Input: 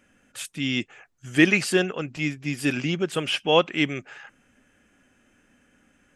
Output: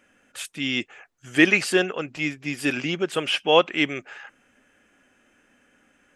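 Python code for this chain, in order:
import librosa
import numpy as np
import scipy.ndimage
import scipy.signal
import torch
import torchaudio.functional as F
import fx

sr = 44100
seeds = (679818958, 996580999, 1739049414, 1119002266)

y = fx.bass_treble(x, sr, bass_db=-9, treble_db=-3)
y = y * 10.0 ** (2.5 / 20.0)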